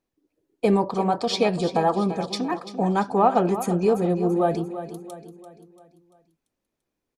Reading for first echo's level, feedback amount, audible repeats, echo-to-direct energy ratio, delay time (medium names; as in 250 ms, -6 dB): -12.0 dB, 47%, 4, -11.0 dB, 341 ms